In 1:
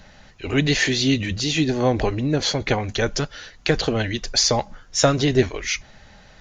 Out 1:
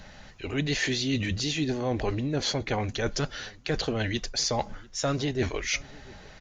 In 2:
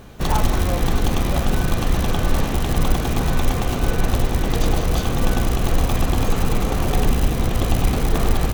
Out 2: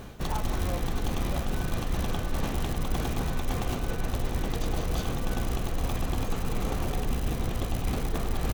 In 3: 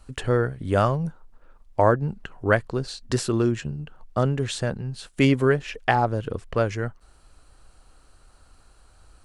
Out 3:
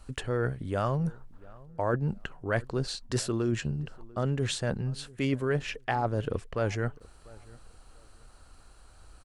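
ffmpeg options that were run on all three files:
-filter_complex "[0:a]areverse,acompressor=threshold=-25dB:ratio=6,areverse,asplit=2[link_01][link_02];[link_02]adelay=694,lowpass=frequency=1700:poles=1,volume=-22.5dB,asplit=2[link_03][link_04];[link_04]adelay=694,lowpass=frequency=1700:poles=1,volume=0.26[link_05];[link_01][link_03][link_05]amix=inputs=3:normalize=0"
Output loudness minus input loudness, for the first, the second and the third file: −7.5, −10.0, −6.5 LU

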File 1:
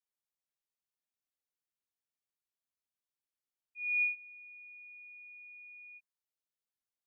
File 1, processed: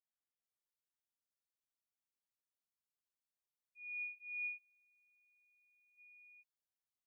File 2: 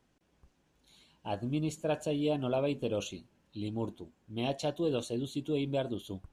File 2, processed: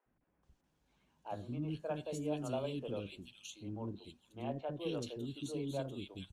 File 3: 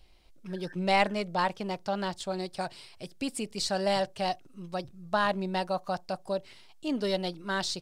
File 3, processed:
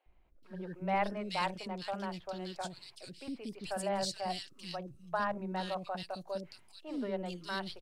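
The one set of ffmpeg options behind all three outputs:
-filter_complex "[0:a]acrossover=split=400|2300[link_01][link_02][link_03];[link_01]adelay=60[link_04];[link_03]adelay=430[link_05];[link_04][link_02][link_05]amix=inputs=3:normalize=0,volume=-5.5dB"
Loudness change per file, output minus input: −11.0, −7.0, −6.5 LU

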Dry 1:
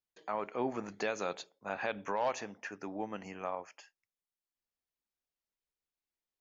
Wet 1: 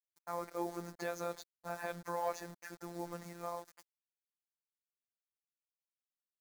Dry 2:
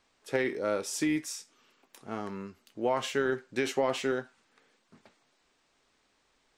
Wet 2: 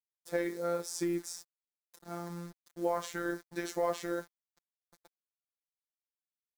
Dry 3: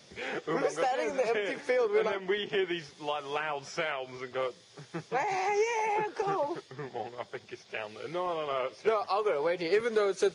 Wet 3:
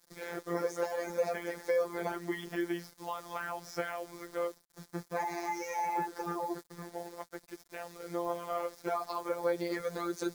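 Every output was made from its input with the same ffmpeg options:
-af "acrusher=bits=7:mix=0:aa=0.000001,equalizer=frequency=2800:width=2.4:gain=-12.5,afftfilt=real='hypot(re,im)*cos(PI*b)':imag='0':win_size=1024:overlap=0.75"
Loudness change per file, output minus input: −4.0, −4.5, −5.0 LU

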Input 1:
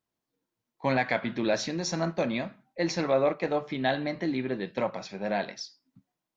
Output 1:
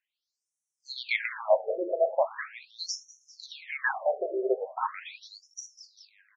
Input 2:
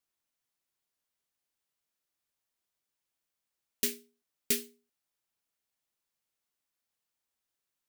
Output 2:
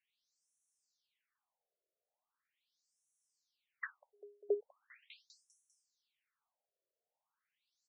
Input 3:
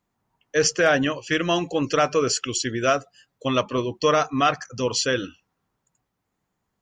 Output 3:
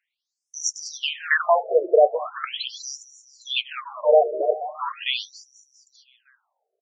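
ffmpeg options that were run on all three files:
-filter_complex "[0:a]acrossover=split=4700[link_01][link_02];[link_02]acompressor=threshold=-41dB:ratio=4:attack=1:release=60[link_03];[link_01][link_03]amix=inputs=2:normalize=0,aecho=1:1:199|398|597|796|995|1194:0.158|0.0951|0.0571|0.0342|0.0205|0.0123,afftfilt=real='re*between(b*sr/1024,480*pow(7900/480,0.5+0.5*sin(2*PI*0.4*pts/sr))/1.41,480*pow(7900/480,0.5+0.5*sin(2*PI*0.4*pts/sr))*1.41)':imag='im*between(b*sr/1024,480*pow(7900/480,0.5+0.5*sin(2*PI*0.4*pts/sr))/1.41,480*pow(7900/480,0.5+0.5*sin(2*PI*0.4*pts/sr))*1.41)':win_size=1024:overlap=0.75,volume=8dB"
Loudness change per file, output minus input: −1.0, −9.5, 0.0 LU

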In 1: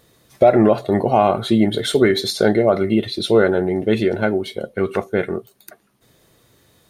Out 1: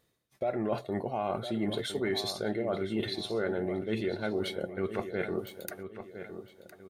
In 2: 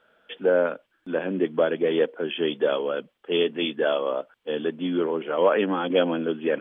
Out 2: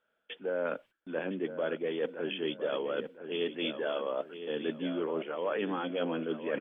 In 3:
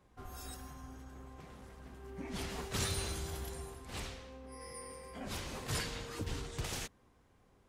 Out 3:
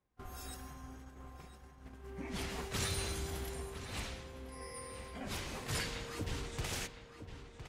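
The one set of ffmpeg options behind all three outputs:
-filter_complex "[0:a]agate=range=-17dB:threshold=-50dB:ratio=16:detection=peak,equalizer=frequency=2200:width_type=o:width=0.77:gain=2.5,areverse,acompressor=threshold=-31dB:ratio=5,areverse,asplit=2[link_01][link_02];[link_02]adelay=1010,lowpass=frequency=3600:poles=1,volume=-10dB,asplit=2[link_03][link_04];[link_04]adelay=1010,lowpass=frequency=3600:poles=1,volume=0.36,asplit=2[link_05][link_06];[link_06]adelay=1010,lowpass=frequency=3600:poles=1,volume=0.36,asplit=2[link_07][link_08];[link_08]adelay=1010,lowpass=frequency=3600:poles=1,volume=0.36[link_09];[link_01][link_03][link_05][link_07][link_09]amix=inputs=5:normalize=0"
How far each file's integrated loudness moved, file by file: −15.5, −9.5, +0.5 LU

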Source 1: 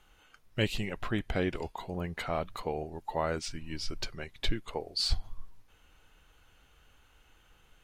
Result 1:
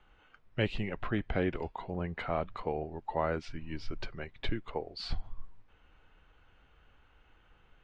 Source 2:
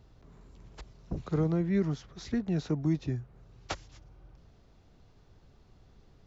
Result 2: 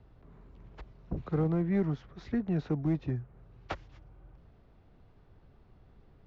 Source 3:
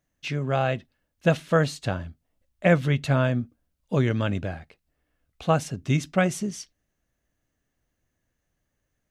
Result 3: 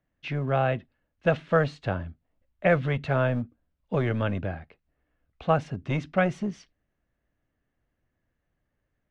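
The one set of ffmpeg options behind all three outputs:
-filter_complex "[0:a]lowpass=2500,acrossover=split=360|1300|1400[link_01][link_02][link_03][link_04];[link_01]asoftclip=type=hard:threshold=-25.5dB[link_05];[link_05][link_02][link_03][link_04]amix=inputs=4:normalize=0"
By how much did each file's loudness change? −1.5, −0.5, −2.0 LU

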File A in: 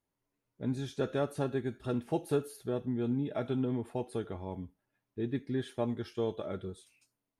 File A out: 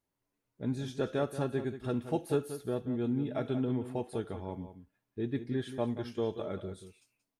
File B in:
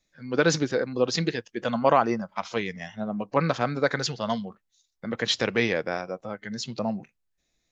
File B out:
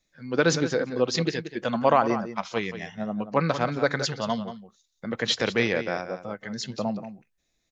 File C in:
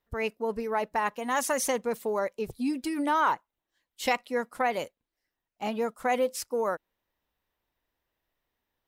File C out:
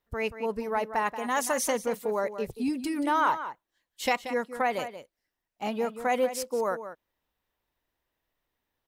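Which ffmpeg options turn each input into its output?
-filter_complex "[0:a]asplit=2[link_01][link_02];[link_02]adelay=180.8,volume=-11dB,highshelf=frequency=4000:gain=-4.07[link_03];[link_01][link_03]amix=inputs=2:normalize=0"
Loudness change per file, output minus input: 0.0, +0.5, 0.0 LU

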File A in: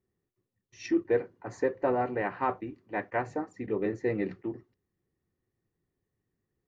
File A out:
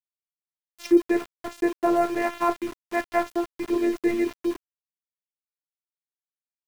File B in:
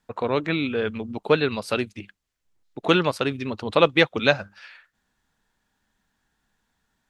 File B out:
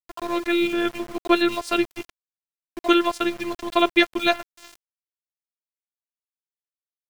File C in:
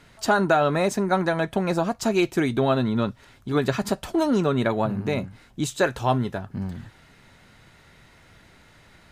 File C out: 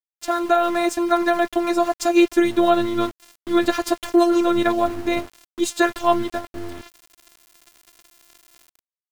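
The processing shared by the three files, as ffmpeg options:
-af "afftfilt=real='hypot(re,im)*cos(PI*b)':imag='0':win_size=512:overlap=0.75,dynaudnorm=framelen=210:gausssize=5:maxgain=9.5dB,aeval=exprs='val(0)*gte(abs(val(0)),0.0211)':channel_layout=same"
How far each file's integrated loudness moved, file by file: +6.5, +0.5, +3.5 LU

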